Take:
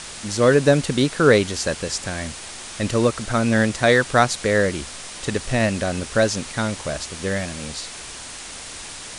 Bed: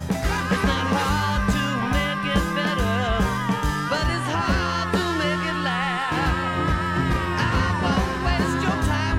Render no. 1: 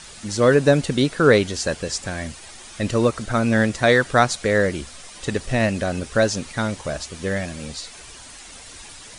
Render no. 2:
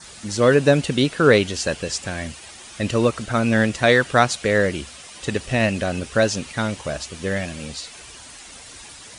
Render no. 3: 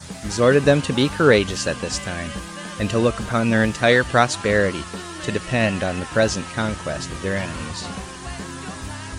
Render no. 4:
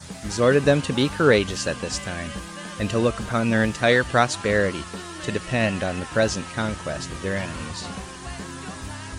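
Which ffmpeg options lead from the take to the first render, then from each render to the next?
-af "afftdn=nr=9:nf=-36"
-af "adynamicequalizer=threshold=0.00708:dfrequency=2800:dqfactor=3:tfrequency=2800:tqfactor=3:attack=5:release=100:ratio=0.375:range=3:mode=boostabove:tftype=bell,highpass=45"
-filter_complex "[1:a]volume=-11dB[a];[0:a][a]amix=inputs=2:normalize=0"
-af "volume=-2.5dB"

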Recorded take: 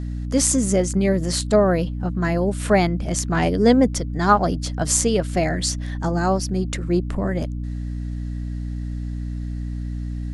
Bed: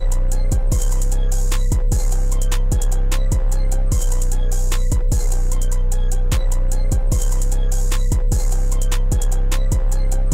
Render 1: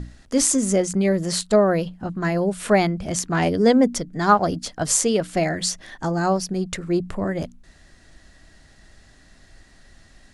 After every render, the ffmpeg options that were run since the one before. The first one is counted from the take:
-af "bandreject=f=60:t=h:w=6,bandreject=f=120:t=h:w=6,bandreject=f=180:t=h:w=6,bandreject=f=240:t=h:w=6,bandreject=f=300:t=h:w=6"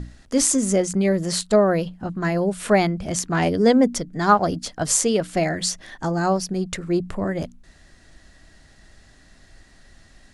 -af anull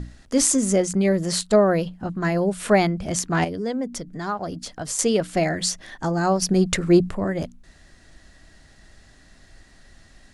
-filter_complex "[0:a]asettb=1/sr,asplit=3[a][b][c];[a]atrim=end=3.444[d];[b]atrim=start=3.44:end=4.99,asetpts=PTS-STARTPTS,afade=t=in:d=0.004:c=qsin,afade=t=out:st=1.546:d=0.004:c=qsin,acompressor=threshold=-32dB:ratio=2:attack=3.2:release=140:knee=1:detection=peak[e];[c]atrim=start=4.986[f];[d][e]acrossfade=d=0.004:c1=hsin:c2=qsin[g];[g][f]acrossfade=d=0.004:c1=qsin:c2=hsin,asplit=3[h][i][j];[h]atrim=end=6.422[k];[i]atrim=start=6.418:end=7.092,asetpts=PTS-STARTPTS,volume=6.5dB[l];[j]atrim=start=7.088[m];[k][l]acrossfade=d=0.004:c1=hsin:c2=hsin[n];[n][m]acrossfade=d=0.004:c1=hsin:c2=hsin"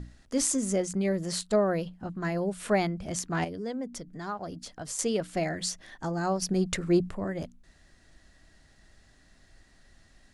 -af "volume=-8dB"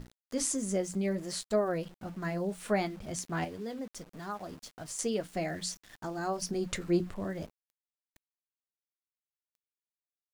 -af "flanger=delay=7.5:depth=3.3:regen=-61:speed=0.62:shape=triangular,aeval=exprs='val(0)*gte(abs(val(0)),0.00335)':c=same"

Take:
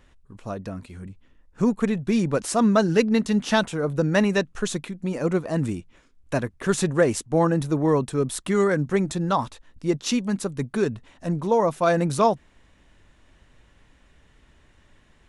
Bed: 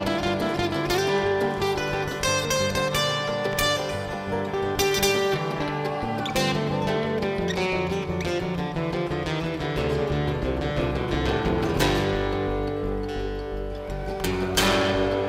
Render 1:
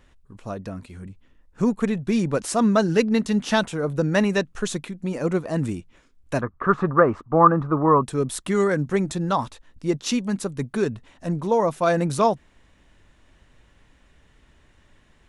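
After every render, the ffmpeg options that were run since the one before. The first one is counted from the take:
-filter_complex "[0:a]asettb=1/sr,asplit=3[a][b][c];[a]atrim=end=6.414[d];[b]atrim=start=6.41:end=8.03,asetpts=PTS-STARTPTS,afade=t=in:d=0.004:c=qsin,afade=t=out:st=1.616:d=0.004:c=qsin,lowpass=f=1.2k:t=q:w=8.1[e];[c]atrim=start=8.026[f];[d][e]acrossfade=d=0.004:c1=hsin:c2=qsin[g];[g][f]acrossfade=d=0.004:c1=qsin:c2=hsin"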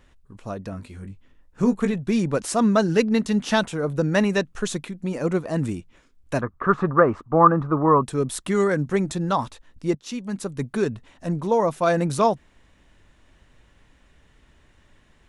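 -filter_complex "[0:a]asettb=1/sr,asplit=3[a][b][c];[a]atrim=end=0.704[d];[b]atrim=start=0.7:end=1.94,asetpts=PTS-STARTPTS,afade=t=in:d=0.004:c=qsin,afade=t=out:st=1.236:d=0.004:c=qsin,asplit=2[e][f];[f]adelay=20,volume=-8dB[g];[e][g]amix=inputs=2:normalize=0,atrim=end_sample=54684[h];[c]atrim=start=1.936[i];[d][h]acrossfade=d=0.004:c1=hsin:c2=qsin[j];[j][i]acrossfade=d=0.004:c1=qsin:c2=hsin,asplit=2[k][l];[k]atrim=end=9.95,asetpts=PTS-STARTPTS,afade=t=out:st=9.946:d=0.004:c=hsin:silence=0.149624[m];[l]atrim=start=9.95,asetpts=PTS-STARTPTS,afade=t=in:d=0.66:silence=0.149624[n];[m][n]concat=n=2:v=0:a=1"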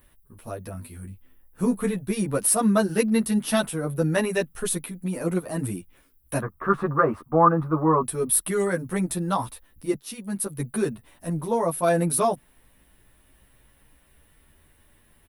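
-filter_complex "[0:a]aexciter=amount=12.6:drive=8.6:freq=10k,asplit=2[a][b];[b]adelay=10.2,afreqshift=0.27[c];[a][c]amix=inputs=2:normalize=1"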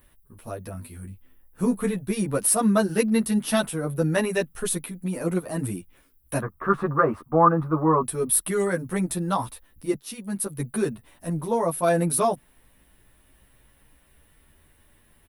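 -af anull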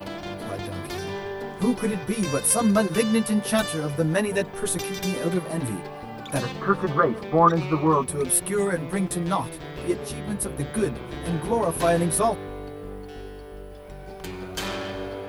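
-filter_complex "[1:a]volume=-9.5dB[a];[0:a][a]amix=inputs=2:normalize=0"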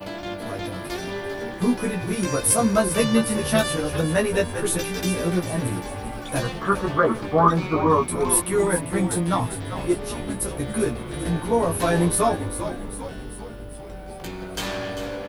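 -filter_complex "[0:a]asplit=2[a][b];[b]adelay=17,volume=-4dB[c];[a][c]amix=inputs=2:normalize=0,asplit=8[d][e][f][g][h][i][j][k];[e]adelay=396,afreqshift=-71,volume=-10dB[l];[f]adelay=792,afreqshift=-142,volume=-14.9dB[m];[g]adelay=1188,afreqshift=-213,volume=-19.8dB[n];[h]adelay=1584,afreqshift=-284,volume=-24.6dB[o];[i]adelay=1980,afreqshift=-355,volume=-29.5dB[p];[j]adelay=2376,afreqshift=-426,volume=-34.4dB[q];[k]adelay=2772,afreqshift=-497,volume=-39.3dB[r];[d][l][m][n][o][p][q][r]amix=inputs=8:normalize=0"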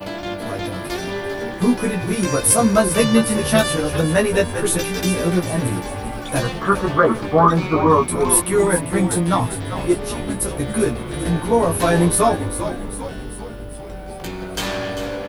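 -af "volume=4.5dB,alimiter=limit=-2dB:level=0:latency=1"

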